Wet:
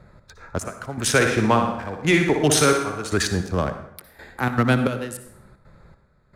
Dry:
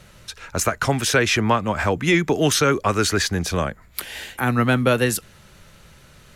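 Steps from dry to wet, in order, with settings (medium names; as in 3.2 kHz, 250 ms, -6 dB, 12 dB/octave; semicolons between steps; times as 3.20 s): local Wiener filter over 15 samples; dynamic bell 9.2 kHz, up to +8 dB, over -47 dBFS, Q 3.3; trance gate "xx.xxx....x" 154 bpm -12 dB; 1.09–3.14 s: flutter echo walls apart 10.3 m, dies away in 0.61 s; reverberation RT60 0.75 s, pre-delay 53 ms, DRR 9 dB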